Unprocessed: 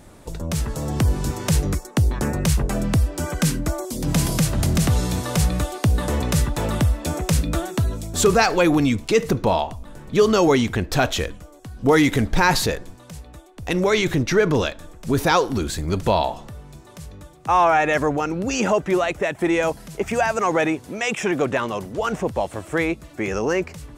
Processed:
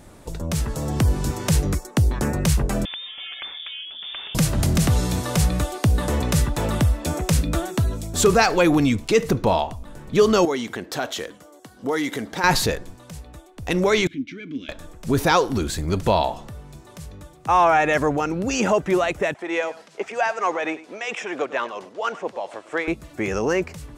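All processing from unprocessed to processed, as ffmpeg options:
ffmpeg -i in.wav -filter_complex "[0:a]asettb=1/sr,asplit=3[link_01][link_02][link_03];[link_01]atrim=end=2.854[link_04];[link_02]atrim=start=2.85:end=4.35,asetpts=PTS-STARTPTS,afade=type=in:duration=0.004:curve=qsin,afade=type=out:start_time=1.496:duration=0.004:curve=qsin,highpass=frequency=410:poles=1,acompressor=threshold=-31dB:ratio=2.5:attack=3.2:release=140:knee=1:detection=peak,lowpass=frequency=3100:width_type=q:width=0.5098,lowpass=frequency=3100:width_type=q:width=0.6013,lowpass=frequency=3100:width_type=q:width=0.9,lowpass=frequency=3100:width_type=q:width=2.563,afreqshift=-3700[link_05];[link_03]atrim=start=4.346[link_06];[link_04][link_05]acrossfade=duration=0.004:curve1=hsin:curve2=qsin[link_07];[link_07][link_06]acrossfade=duration=0.004:curve1=qsin:curve2=hsin,asettb=1/sr,asplit=3[link_08][link_09][link_10];[link_08]atrim=end=10.454[link_11];[link_09]atrim=start=10.45:end=12.44,asetpts=PTS-STARTPTS,afade=type=in:duration=0.004:curve=qsin,afade=type=out:start_time=1.986:duration=0.004:curve=qsin,highpass=250,bandreject=frequency=2500:width=11,acompressor=threshold=-32dB:ratio=1.5:attack=3.2:release=140:knee=1:detection=peak[link_12];[link_10]atrim=start=12.436[link_13];[link_11][link_12]acrossfade=duration=0.004:curve1=hsin:curve2=qsin[link_14];[link_14][link_13]acrossfade=duration=0.004:curve1=qsin:curve2=hsin,asettb=1/sr,asplit=3[link_15][link_16][link_17];[link_15]atrim=end=14.074[link_18];[link_16]atrim=start=14.07:end=14.69,asetpts=PTS-STARTPTS,afade=type=in:duration=0.004:curve=qsin,afade=type=out:start_time=0.616:duration=0.004:curve=qsin,asplit=3[link_19][link_20][link_21];[link_19]bandpass=frequency=270:width_type=q:width=8,volume=0dB[link_22];[link_20]bandpass=frequency=2290:width_type=q:width=8,volume=-6dB[link_23];[link_21]bandpass=frequency=3010:width_type=q:width=8,volume=-9dB[link_24];[link_22][link_23][link_24]amix=inputs=3:normalize=0,equalizer=frequency=490:width_type=o:width=0.66:gain=-9.5,bandreject=frequency=1900:width=10[link_25];[link_17]atrim=start=14.686[link_26];[link_18][link_25]acrossfade=duration=0.004:curve1=hsin:curve2=qsin[link_27];[link_27][link_26]acrossfade=duration=0.004:curve1=qsin:curve2=hsin,asettb=1/sr,asplit=3[link_28][link_29][link_30];[link_28]atrim=end=19.344[link_31];[link_29]atrim=start=19.34:end=22.88,asetpts=PTS-STARTPTS,afade=type=in:duration=0.004:curve=qsin,afade=type=out:start_time=3.536:duration=0.004:curve=qsin,tremolo=f=4.4:d=0.5,highpass=430,lowpass=5500,aecho=1:1:101:0.141,atrim=end_sample=156114[link_32];[link_30]atrim=start=22.876[link_33];[link_31][link_32]acrossfade=duration=0.004:curve1=hsin:curve2=qsin[link_34];[link_34][link_33]acrossfade=duration=0.004:curve1=qsin:curve2=hsin" out.wav

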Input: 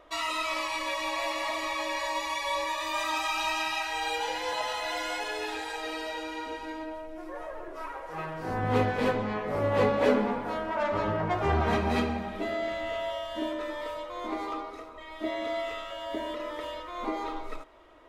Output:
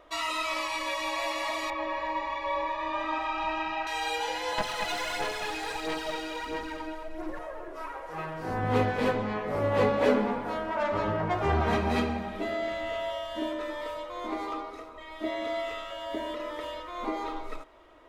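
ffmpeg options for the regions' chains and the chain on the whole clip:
ffmpeg -i in.wav -filter_complex "[0:a]asettb=1/sr,asplit=3[link_01][link_02][link_03];[link_01]atrim=end=1.704[link_04];[link_02]atrim=start=1.7:end=3.87,asetpts=PTS-STARTPTS,afade=type=in:duration=0.004:curve=qsin,afade=type=out:start_time=2.166:duration=0.004:curve=qsin,lowpass=2500,tiltshelf=frequency=970:gain=4,aecho=1:1:126:0.422,atrim=end_sample=95697[link_05];[link_03]atrim=start=3.866[link_06];[link_04][link_05]acrossfade=duration=0.004:curve1=hsin:curve2=qsin[link_07];[link_07][link_06]acrossfade=duration=0.004:curve1=qsin:curve2=hsin,asettb=1/sr,asplit=3[link_08][link_09][link_10];[link_08]atrim=end=4.584[link_11];[link_09]atrim=start=4.58:end=7.39,asetpts=PTS-STARTPTS,afade=type=in:duration=0.004:curve=qsin,afade=type=out:start_time=2.806:duration=0.004:curve=qsin,aphaser=in_gain=1:out_gain=1:delay=2.8:decay=0.61:speed=1.5:type=sinusoidal,aeval=exprs='clip(val(0),-1,0.0188)':channel_layout=same,aecho=1:1:221:0.376,atrim=end_sample=123921[link_12];[link_10]atrim=start=7.386[link_13];[link_11][link_12]acrossfade=duration=0.004:curve1=hsin:curve2=qsin[link_14];[link_14][link_13]acrossfade=duration=0.004:curve1=qsin:curve2=hsin" out.wav

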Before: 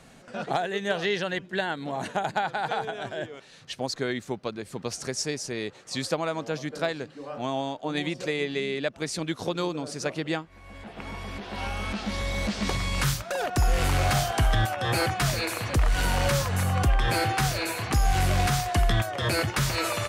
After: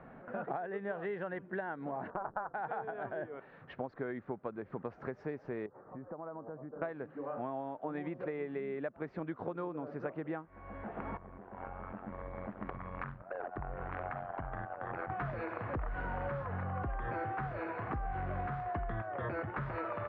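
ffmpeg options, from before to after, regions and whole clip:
ffmpeg -i in.wav -filter_complex "[0:a]asettb=1/sr,asplit=3[link_01][link_02][link_03];[link_01]atrim=end=2.104[link_04];[link_02]atrim=start=2.1:end=2.54,asetpts=PTS-STARTPTS,afade=type=in:duration=0.004:curve=qsin,afade=type=out:start_time=0.436:duration=0.004:curve=qsin,adynamicsmooth=sensitivity=2:basefreq=700,tremolo=f=210:d=0.974,lowpass=frequency=1300:width_type=q:width=2.6[link_05];[link_03]atrim=start=2.536[link_06];[link_04][link_05]acrossfade=duration=0.004:curve1=hsin:curve2=qsin[link_07];[link_07][link_06]acrossfade=duration=0.004:curve1=qsin:curve2=hsin,asettb=1/sr,asplit=3[link_08][link_09][link_10];[link_08]atrim=end=5.664[link_11];[link_09]atrim=start=5.66:end=6.82,asetpts=PTS-STARTPTS,afade=type=in:duration=0.004:curve=qsin,afade=type=out:start_time=1.156:duration=0.004:curve=qsin,lowpass=frequency=1300:width=0.5412,lowpass=frequency=1300:width=1.3066,acompressor=threshold=-44dB:ratio=4:attack=3.2:release=140:knee=1:detection=peak[link_12];[link_10]atrim=start=6.816[link_13];[link_11][link_12]acrossfade=duration=0.004:curve1=hsin:curve2=qsin[link_14];[link_14][link_13]acrossfade=duration=0.004:curve1=qsin:curve2=hsin,asettb=1/sr,asplit=3[link_15][link_16][link_17];[link_15]atrim=end=11.174[link_18];[link_16]atrim=start=11.17:end=15.1,asetpts=PTS-STARTPTS,afade=type=in:duration=0.004:curve=qsin,afade=type=out:start_time=3.926:duration=0.004:curve=qsin,tiltshelf=frequency=1200:gain=-9,tremolo=f=90:d=0.75,adynamicsmooth=sensitivity=1:basefreq=580[link_19];[link_17]atrim=start=15.096[link_20];[link_18][link_19]acrossfade=duration=0.004:curve1=hsin:curve2=qsin[link_21];[link_21][link_20]acrossfade=duration=0.004:curve1=qsin:curve2=hsin,lowpass=frequency=1600:width=0.5412,lowpass=frequency=1600:width=1.3066,lowshelf=frequency=170:gain=-7,acompressor=threshold=-39dB:ratio=4,volume=2dB" out.wav

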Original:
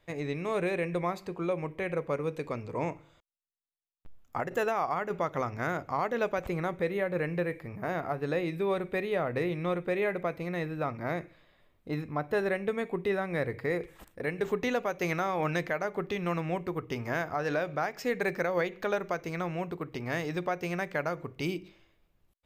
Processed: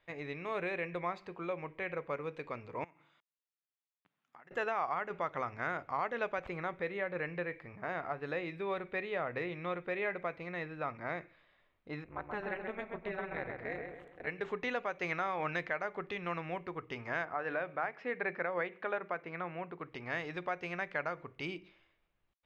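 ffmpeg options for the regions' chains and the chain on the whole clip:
ffmpeg -i in.wav -filter_complex "[0:a]asettb=1/sr,asplit=3[link_01][link_02][link_03];[link_01]atrim=end=2.844[link_04];[link_02]atrim=start=2.84:end=4.51,asetpts=PTS-STARTPTS,afade=type=in:duration=0.004:curve=qsin,afade=type=out:start_time=1.666:duration=0.004:curve=qsin,highpass=frequency=150:width=0.5412,highpass=frequency=150:width=1.3066,equalizer=frequency=520:width=1.4:gain=-8,acompressor=threshold=-50dB:ratio=6:attack=3.2:release=140:knee=1:detection=peak[link_05];[link_03]atrim=start=4.506[link_06];[link_04][link_05]acrossfade=duration=0.004:curve1=hsin:curve2=qsin[link_07];[link_07][link_06]acrossfade=duration=0.004:curve1=qsin:curve2=hsin,asettb=1/sr,asplit=3[link_08][link_09][link_10];[link_08]atrim=end=12.044[link_11];[link_09]atrim=start=12.04:end=14.27,asetpts=PTS-STARTPTS,afade=type=in:duration=0.004:curve=qsin,afade=type=out:start_time=2.226:duration=0.004:curve=qsin,equalizer=frequency=5100:width_type=o:width=0.34:gain=-11,tremolo=f=210:d=0.974,asplit=2[link_12][link_13];[link_13]adelay=131,lowpass=frequency=2300:poles=1,volume=-4dB,asplit=2[link_14][link_15];[link_15]adelay=131,lowpass=frequency=2300:poles=1,volume=0.44,asplit=2[link_16][link_17];[link_17]adelay=131,lowpass=frequency=2300:poles=1,volume=0.44,asplit=2[link_18][link_19];[link_19]adelay=131,lowpass=frequency=2300:poles=1,volume=0.44,asplit=2[link_20][link_21];[link_21]adelay=131,lowpass=frequency=2300:poles=1,volume=0.44,asplit=2[link_22][link_23];[link_23]adelay=131,lowpass=frequency=2300:poles=1,volume=0.44[link_24];[link_12][link_14][link_16][link_18][link_20][link_22][link_24]amix=inputs=7:normalize=0,atrim=end_sample=98343[link_25];[link_10]atrim=start=14.266[link_26];[link_11][link_25]acrossfade=duration=0.004:curve1=hsin:curve2=qsin[link_27];[link_27][link_26]acrossfade=duration=0.004:curve1=qsin:curve2=hsin,asettb=1/sr,asplit=3[link_28][link_29][link_30];[link_28]atrim=end=17.254[link_31];[link_29]atrim=start=17.25:end=19.79,asetpts=PTS-STARTPTS,afade=type=in:duration=0.004:curve=qsin,afade=type=out:start_time=2.536:duration=0.004:curve=qsin,highpass=100,lowpass=2500,bandreject=frequency=50:width_type=h:width=6,bandreject=frequency=100:width_type=h:width=6,bandreject=frequency=150:width_type=h:width=6,bandreject=frequency=200:width_type=h:width=6[link_32];[link_30]atrim=start=19.786[link_33];[link_31][link_32]acrossfade=duration=0.004:curve1=hsin:curve2=qsin[link_34];[link_34][link_33]acrossfade=duration=0.004:curve1=qsin:curve2=hsin,lowpass=2800,tiltshelf=frequency=710:gain=-6,volume=-5.5dB" out.wav

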